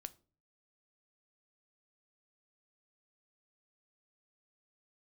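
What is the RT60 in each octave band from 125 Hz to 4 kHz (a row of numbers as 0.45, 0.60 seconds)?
0.70, 0.55, 0.45, 0.35, 0.25, 0.25 seconds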